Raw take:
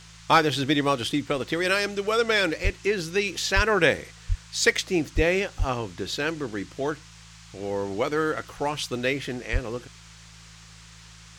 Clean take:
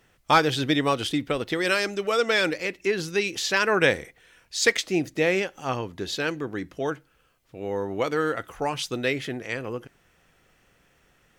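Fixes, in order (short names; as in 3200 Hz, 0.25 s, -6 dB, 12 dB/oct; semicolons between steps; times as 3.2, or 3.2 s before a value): de-hum 54.9 Hz, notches 3; de-plosive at 2.63/3.55/4.28/5.15/5.58/9.52; noise print and reduce 15 dB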